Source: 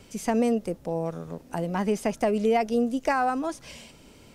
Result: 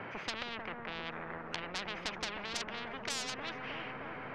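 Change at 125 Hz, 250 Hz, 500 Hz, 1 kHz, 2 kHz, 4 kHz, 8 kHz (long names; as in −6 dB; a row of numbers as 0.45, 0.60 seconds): −15.0, −20.5, −19.0, −13.5, −3.5, +4.5, −3.5 decibels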